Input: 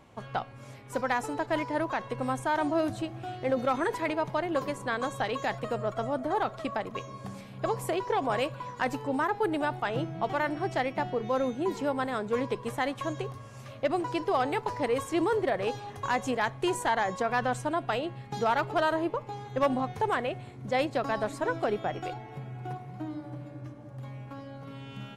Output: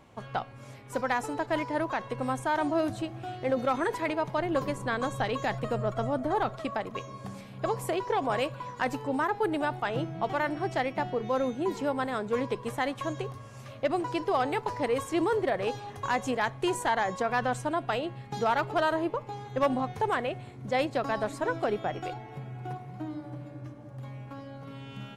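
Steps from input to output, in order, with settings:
0:04.38–0:06.56: low-shelf EQ 160 Hz +9 dB

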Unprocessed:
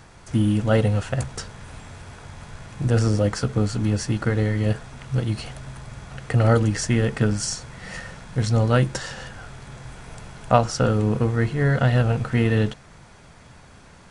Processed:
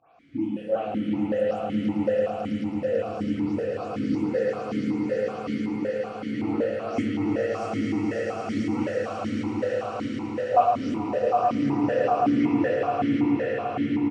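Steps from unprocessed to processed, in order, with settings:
every frequency bin delayed by itself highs late, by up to 189 ms
echo that builds up and dies away 110 ms, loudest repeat 8, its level −5.5 dB
pitch-shifted copies added −3 semitones −9 dB
convolution reverb RT60 1.6 s, pre-delay 5 ms, DRR −1 dB
formant filter that steps through the vowels 5.3 Hz

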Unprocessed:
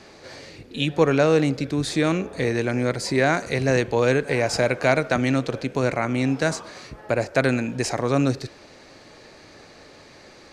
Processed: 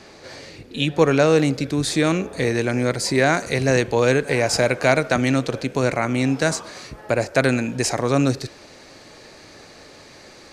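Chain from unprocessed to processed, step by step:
high-shelf EQ 6,400 Hz +2 dB, from 0:00.99 +7.5 dB
level +2 dB

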